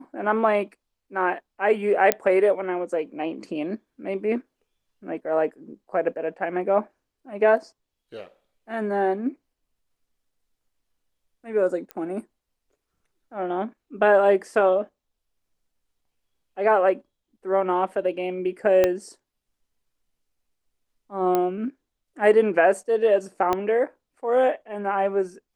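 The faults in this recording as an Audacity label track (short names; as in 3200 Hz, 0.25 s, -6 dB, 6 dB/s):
2.120000	2.120000	pop -3 dBFS
11.910000	11.910000	pop -19 dBFS
18.840000	18.840000	pop -7 dBFS
21.350000	21.350000	pop -10 dBFS
23.530000	23.530000	pop -10 dBFS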